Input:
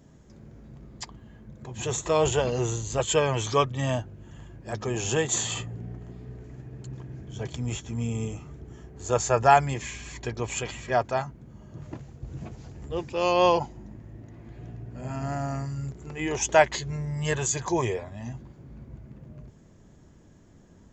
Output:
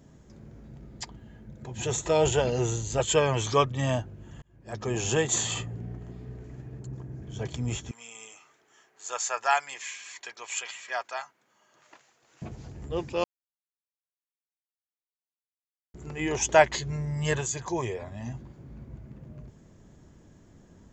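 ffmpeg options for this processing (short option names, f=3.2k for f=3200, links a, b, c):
-filter_complex "[0:a]asettb=1/sr,asplit=3[a][b][c];[a]atrim=end=0.674[d];[b]atrim=start=0.67:end=3.1,asetpts=PTS-STARTPTS,afade=t=in:d=0.004:c=qsin,afade=t=out:st=2.426:d=0.004:c=qsin,asuperstop=centerf=1100:order=4:qfactor=7.2[e];[c]atrim=start=3.096[f];[d][e]acrossfade=d=0.004:c1=hsin:c2=qsin[g];[g][f]acrossfade=d=0.004:c1=qsin:c2=hsin,asettb=1/sr,asplit=3[h][i][j];[h]atrim=end=6.794[k];[i]atrim=start=6.79:end=7.22,asetpts=PTS-STARTPTS,afade=t=in:d=0.004:c=qsin,afade=t=out:st=0.426:d=0.004:c=qsin,equalizer=f=3k:w=0.8:g=-8.5[l];[j]atrim=start=7.216[m];[k][l]acrossfade=d=0.004:c1=hsin:c2=qsin[n];[n][m]acrossfade=d=0.004:c1=qsin:c2=hsin,asettb=1/sr,asplit=3[o][p][q];[o]atrim=end=7.914[r];[p]atrim=start=7.91:end=12.42,asetpts=PTS-STARTPTS,afade=t=in:d=0.004:c=qsin,afade=t=out:st=4.506:d=0.004:c=qsin,highpass=1.2k[s];[q]atrim=start=12.416[t];[r][s]acrossfade=d=0.004:c1=hsin:c2=qsin[u];[u][t]acrossfade=d=0.004:c1=qsin:c2=hsin,asplit=6[v][w][x][y][z][aa];[v]atrim=end=4.42,asetpts=PTS-STARTPTS,afade=t=out:st=4.416:d=0.004:c=hsin[ab];[w]atrim=start=4.42:end=13.24,asetpts=PTS-STARTPTS,afade=t=in:d=0.51,afade=t=out:st=8.816:d=0.004:c=hsin[ac];[x]atrim=start=13.24:end=15.94,asetpts=PTS-STARTPTS,volume=0[ad];[y]atrim=start=15.94:end=17.412,asetpts=PTS-STARTPTS,afade=t=in:d=0.004:c=hsin[ae];[z]atrim=start=17.408:end=18.002,asetpts=PTS-STARTPTS,volume=-4.5dB[af];[aa]atrim=start=17.998[ag];[ab][ac][ad][ae]concat=n=4:v=0:a=1[ah];[ah][af]acrossfade=d=0.004:c1=hsin:c2=hsin[ai];[ai][ag]acrossfade=d=0.004:c1=hsin:c2=hsin"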